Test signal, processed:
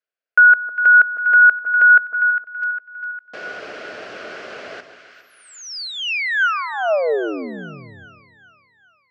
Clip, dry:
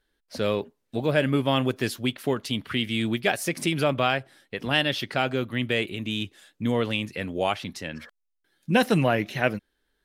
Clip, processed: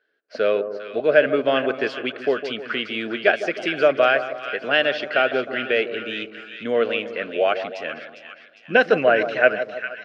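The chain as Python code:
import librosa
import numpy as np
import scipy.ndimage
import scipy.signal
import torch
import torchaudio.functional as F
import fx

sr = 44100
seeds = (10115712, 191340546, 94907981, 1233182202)

y = fx.cabinet(x, sr, low_hz=340.0, low_slope=12, high_hz=4600.0, hz=(440.0, 630.0, 920.0, 1500.0, 2600.0, 3700.0), db=(7, 9, -9, 10, 3, -7))
y = fx.echo_split(y, sr, split_hz=1200.0, low_ms=155, high_ms=404, feedback_pct=52, wet_db=-10)
y = F.gain(torch.from_numpy(y), 1.5).numpy()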